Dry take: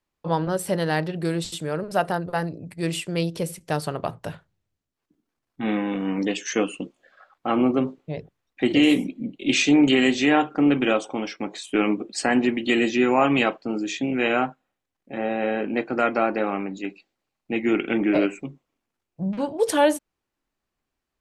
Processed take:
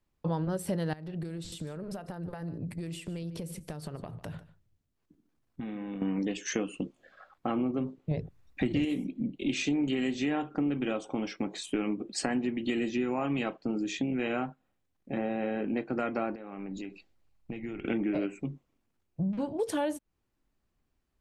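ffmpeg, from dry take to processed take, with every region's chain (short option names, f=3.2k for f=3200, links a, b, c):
-filter_complex "[0:a]asettb=1/sr,asplit=3[a][b][c];[a]atrim=end=0.934[d];[b]atrim=start=0.93:end=6.02,asetpts=PTS-STARTPTS,afade=t=in:d=0.004:c=qsin,afade=t=out:st=5.086:d=0.004:c=qsin,acompressor=threshold=-37dB:ratio=16:attack=3.2:release=140:knee=1:detection=peak,aecho=1:1:148:0.141,atrim=end_sample=224469[e];[c]atrim=start=6.016[f];[d][e]acrossfade=d=0.004:c1=hsin:c2=qsin[g];[g][f]acrossfade=d=0.004:c1=qsin:c2=hsin,asettb=1/sr,asplit=3[h][i][j];[h]atrim=end=8.114[k];[i]atrim=start=8.11:end=8.85,asetpts=PTS-STARTPTS,afade=t=in:d=0.004:c=qsin,afade=t=out:st=0.736:d=0.004:c=qsin,bandreject=f=3.1k:w=16,asubboost=boost=9.5:cutoff=170,acontrast=53[l];[j]atrim=start=8.846[m];[k][l]acrossfade=d=0.004:c1=hsin:c2=qsin[n];[n][m]acrossfade=d=0.004:c1=qsin:c2=hsin,asettb=1/sr,asplit=3[o][p][q];[o]atrim=end=16.354[r];[p]atrim=start=16.35:end=17.85,asetpts=PTS-STARTPTS,afade=t=in:d=0.004:c=qsin,afade=t=out:st=1.496:d=0.004:c=qsin,asubboost=boost=10.5:cutoff=100,acompressor=threshold=-37dB:ratio=10:attack=3.2:release=140:knee=1:detection=peak[s];[q]atrim=start=17.846[t];[r][s]acrossfade=d=0.004:c1=hsin:c2=qsin[u];[u][t]acrossfade=d=0.004:c1=qsin:c2=hsin,lowshelf=f=270:g=11.5,acompressor=threshold=-27dB:ratio=4,volume=-2.5dB"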